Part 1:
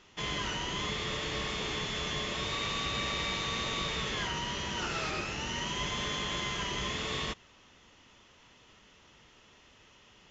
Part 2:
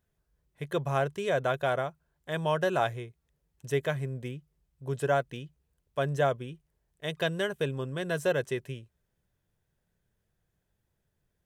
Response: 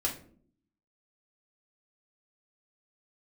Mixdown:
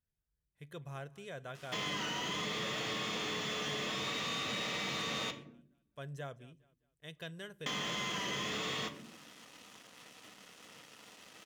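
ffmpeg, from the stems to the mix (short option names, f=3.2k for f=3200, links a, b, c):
-filter_complex "[0:a]acrusher=bits=8:mix=0:aa=0.5,highpass=f=130:w=0.5412,highpass=f=130:w=1.3066,adelay=1550,volume=2dB,asplit=3[a][b][c];[a]atrim=end=5.31,asetpts=PTS-STARTPTS,afade=t=out:st=5.306:d=0.004:c=hsin[d];[b]atrim=start=5.31:end=7.66,asetpts=PTS-STARTPTS,volume=0[e];[c]atrim=start=7.66,asetpts=PTS-STARTPTS,afade=t=in:d=0.004:c=hsin[f];[d][e][f]concat=n=3:v=0:a=1,asplit=2[g][h];[h]volume=-8dB[i];[1:a]equalizer=f=650:w=0.62:g=-8,volume=-12.5dB,asplit=3[j][k][l];[k]volume=-20.5dB[m];[l]volume=-21dB[n];[2:a]atrim=start_sample=2205[o];[i][m]amix=inputs=2:normalize=0[p];[p][o]afir=irnorm=-1:irlink=0[q];[n]aecho=0:1:206|412|618|824|1030:1|0.32|0.102|0.0328|0.0105[r];[g][j][q][r]amix=inputs=4:normalize=0,asoftclip=type=tanh:threshold=-23dB,acompressor=threshold=-37dB:ratio=3"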